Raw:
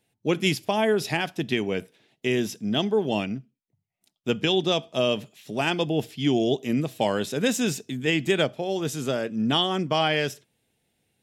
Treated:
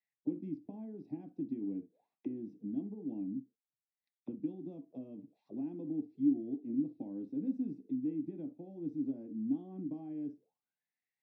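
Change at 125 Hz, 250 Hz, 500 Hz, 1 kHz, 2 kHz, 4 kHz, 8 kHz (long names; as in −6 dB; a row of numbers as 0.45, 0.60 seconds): −19.0 dB, −9.0 dB, −24.5 dB, below −30 dB, below −40 dB, below −40 dB, below −40 dB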